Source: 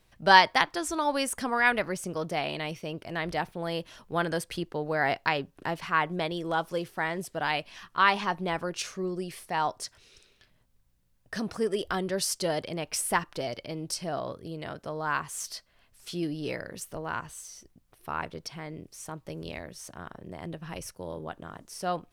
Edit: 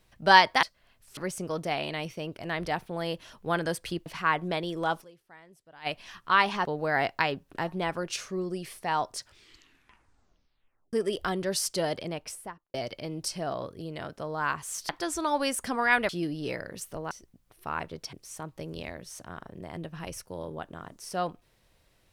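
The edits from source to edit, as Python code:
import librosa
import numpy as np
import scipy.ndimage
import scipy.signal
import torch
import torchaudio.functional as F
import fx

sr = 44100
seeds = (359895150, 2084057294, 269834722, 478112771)

y = fx.studio_fade_out(x, sr, start_s=12.63, length_s=0.77)
y = fx.edit(y, sr, fx.swap(start_s=0.63, length_s=1.2, other_s=15.55, other_length_s=0.54),
    fx.move(start_s=4.72, length_s=1.02, to_s=8.33),
    fx.fade_down_up(start_s=6.69, length_s=0.86, db=-22.0, fade_s=0.17, curve='exp'),
    fx.tape_stop(start_s=9.85, length_s=1.74),
    fx.cut(start_s=17.11, length_s=0.42),
    fx.cut(start_s=18.55, length_s=0.27), tone=tone)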